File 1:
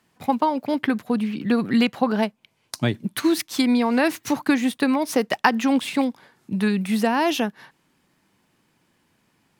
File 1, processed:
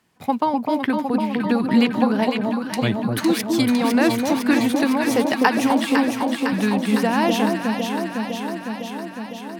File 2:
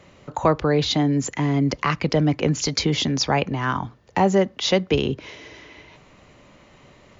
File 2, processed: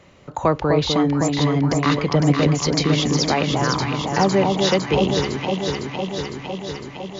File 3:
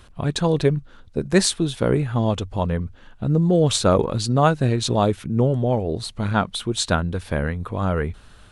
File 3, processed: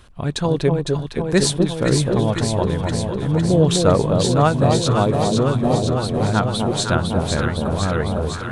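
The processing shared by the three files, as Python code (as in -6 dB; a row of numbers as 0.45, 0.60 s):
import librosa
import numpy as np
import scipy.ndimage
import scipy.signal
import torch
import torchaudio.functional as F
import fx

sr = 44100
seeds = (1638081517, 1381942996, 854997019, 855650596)

y = fx.echo_alternate(x, sr, ms=253, hz=1000.0, feedback_pct=84, wet_db=-3)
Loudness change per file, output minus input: +2.0, +2.0, +3.0 LU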